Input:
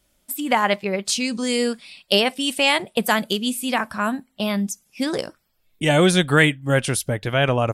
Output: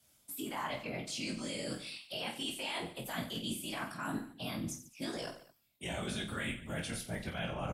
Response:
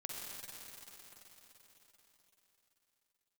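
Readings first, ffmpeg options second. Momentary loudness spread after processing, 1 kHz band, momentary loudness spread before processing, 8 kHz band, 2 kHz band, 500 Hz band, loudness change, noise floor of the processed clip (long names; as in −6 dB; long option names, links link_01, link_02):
4 LU, −18.5 dB, 10 LU, −16.0 dB, −19.0 dB, −21.0 dB, −18.5 dB, −69 dBFS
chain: -filter_complex "[0:a]alimiter=limit=-12.5dB:level=0:latency=1,areverse,acompressor=threshold=-29dB:ratio=12,areverse,highpass=57,bandreject=frequency=1800:width=25,acrossover=split=3700[link_01][link_02];[link_02]acompressor=threshold=-42dB:ratio=4:attack=1:release=60[link_03];[link_01][link_03]amix=inputs=2:normalize=0,highshelf=frequency=3500:gain=7.5,afftfilt=real='hypot(re,im)*cos(2*PI*random(0))':imag='hypot(re,im)*sin(2*PI*random(1))':win_size=512:overlap=0.75,firequalizer=gain_entry='entry(130,0);entry(400,-7);entry(630,-2)':delay=0.05:min_phase=1,aecho=1:1:20|48|87.2|142.1|218.9:0.631|0.398|0.251|0.158|0.1,afreqshift=24"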